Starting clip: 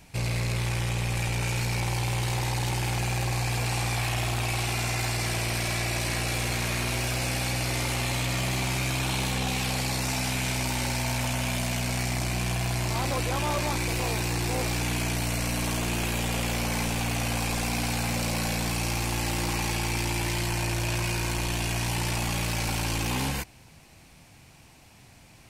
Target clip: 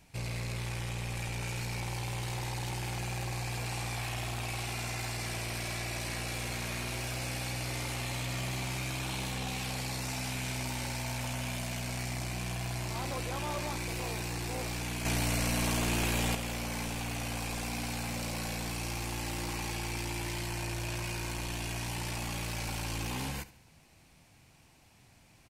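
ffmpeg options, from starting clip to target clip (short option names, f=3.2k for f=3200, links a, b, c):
-filter_complex "[0:a]asplit=2[a][b];[b]aecho=0:1:72|144|216:0.141|0.0466|0.0154[c];[a][c]amix=inputs=2:normalize=0,asettb=1/sr,asplit=3[d][e][f];[d]atrim=end=15.054[g];[e]atrim=start=15.05:end=16.35,asetpts=PTS-STARTPTS,afade=t=in:d=0.004:c=qsin,afade=t=out:st=1.296:d=0.004:c=qsin,acontrast=55[h];[f]atrim=start=16.346[i];[g][h]acrossfade=d=0.004:c1=hsin:c2=qsin[j];[j][i]acrossfade=d=0.004:c1=qsin:c2=hsin,volume=-8dB"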